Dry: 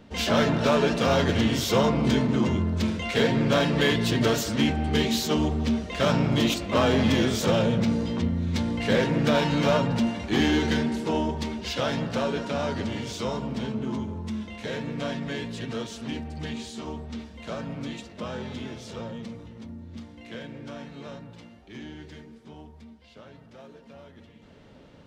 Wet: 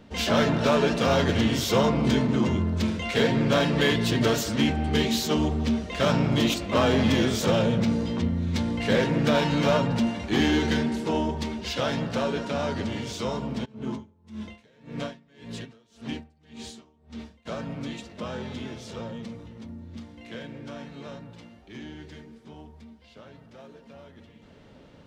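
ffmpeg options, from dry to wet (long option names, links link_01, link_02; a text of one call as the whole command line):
ffmpeg -i in.wav -filter_complex "[0:a]asplit=3[link_01][link_02][link_03];[link_01]afade=type=out:start_time=13.64:duration=0.02[link_04];[link_02]aeval=exprs='val(0)*pow(10,-29*(0.5-0.5*cos(2*PI*1.8*n/s))/20)':channel_layout=same,afade=type=in:start_time=13.64:duration=0.02,afade=type=out:start_time=17.45:duration=0.02[link_05];[link_03]afade=type=in:start_time=17.45:duration=0.02[link_06];[link_04][link_05][link_06]amix=inputs=3:normalize=0" out.wav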